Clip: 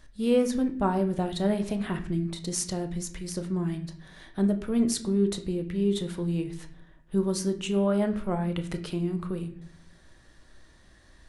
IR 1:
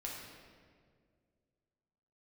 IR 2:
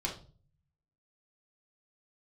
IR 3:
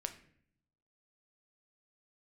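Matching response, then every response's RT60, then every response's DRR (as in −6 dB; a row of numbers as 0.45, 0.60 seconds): 3; 2.0, 0.40, 0.60 seconds; −3.5, −3.0, 6.5 decibels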